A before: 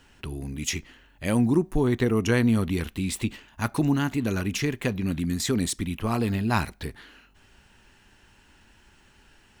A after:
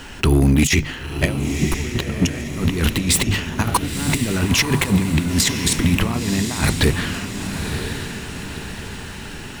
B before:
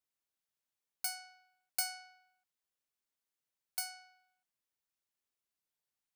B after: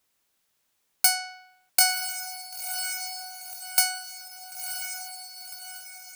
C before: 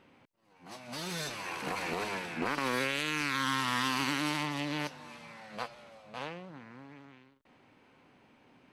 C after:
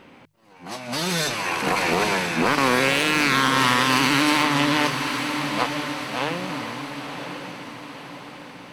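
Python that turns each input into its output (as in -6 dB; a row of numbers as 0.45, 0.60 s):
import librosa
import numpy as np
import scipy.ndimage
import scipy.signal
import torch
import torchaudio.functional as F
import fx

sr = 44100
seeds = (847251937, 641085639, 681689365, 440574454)

y = fx.hum_notches(x, sr, base_hz=50, count=3)
y = fx.over_compress(y, sr, threshold_db=-32.0, ratio=-0.5)
y = np.clip(10.0 ** (23.0 / 20.0) * y, -1.0, 1.0) / 10.0 ** (23.0 / 20.0)
y = fx.echo_diffused(y, sr, ms=1003, feedback_pct=49, wet_db=-7.0)
y = y * 10.0 ** (-6 / 20.0) / np.max(np.abs(y))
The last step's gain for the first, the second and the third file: +13.5, +17.0, +13.0 dB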